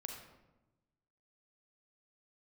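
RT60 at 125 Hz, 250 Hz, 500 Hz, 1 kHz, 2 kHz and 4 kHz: 1.5, 1.3, 1.1, 1.0, 0.80, 0.60 seconds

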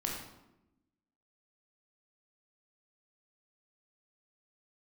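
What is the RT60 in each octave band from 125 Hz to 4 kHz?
1.2, 1.4, 1.0, 0.85, 0.70, 0.60 seconds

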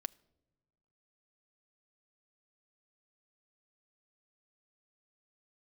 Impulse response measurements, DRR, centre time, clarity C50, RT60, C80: 11.5 dB, 2 ms, 25.5 dB, non-exponential decay, 27.5 dB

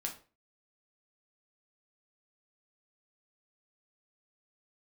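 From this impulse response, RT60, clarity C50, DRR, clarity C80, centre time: 0.35 s, 10.5 dB, 0.5 dB, 16.0 dB, 16 ms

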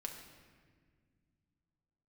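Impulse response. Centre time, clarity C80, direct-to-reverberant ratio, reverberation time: 39 ms, 7.0 dB, 1.5 dB, 1.7 s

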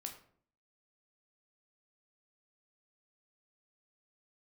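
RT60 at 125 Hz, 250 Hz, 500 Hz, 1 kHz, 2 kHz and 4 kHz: 0.70, 0.70, 0.60, 0.50, 0.45, 0.35 seconds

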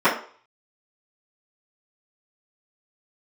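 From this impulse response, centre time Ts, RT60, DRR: 25 ms, 0.45 s, −15.0 dB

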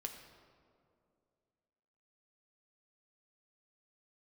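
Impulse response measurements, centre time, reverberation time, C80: 33 ms, 2.4 s, 8.0 dB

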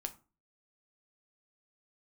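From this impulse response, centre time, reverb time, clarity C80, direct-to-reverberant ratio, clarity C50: 5 ms, 0.35 s, 21.5 dB, 7.0 dB, 16.5 dB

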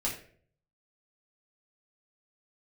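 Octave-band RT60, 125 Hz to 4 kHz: 0.90, 0.60, 0.60, 0.40, 0.45, 0.35 seconds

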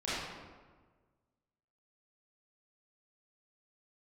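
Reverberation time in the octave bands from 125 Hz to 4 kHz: 1.8, 1.6, 1.5, 1.4, 1.1, 0.85 seconds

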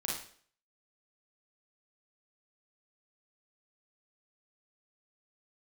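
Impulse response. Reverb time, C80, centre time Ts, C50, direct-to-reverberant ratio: 0.50 s, 7.0 dB, 47 ms, 1.0 dB, −4.0 dB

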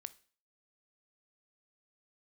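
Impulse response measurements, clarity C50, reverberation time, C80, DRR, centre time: 19.5 dB, 0.45 s, 24.5 dB, 14.0 dB, 2 ms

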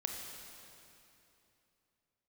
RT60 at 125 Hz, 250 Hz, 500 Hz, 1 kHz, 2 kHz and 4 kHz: 3.3, 3.2, 3.0, 2.9, 2.7, 2.6 seconds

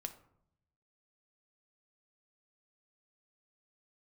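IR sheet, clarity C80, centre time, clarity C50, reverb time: 16.0 dB, 8 ms, 12.5 dB, 0.70 s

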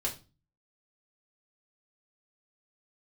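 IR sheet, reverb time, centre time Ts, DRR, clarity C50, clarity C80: 0.30 s, 16 ms, −3.5 dB, 12.5 dB, 18.5 dB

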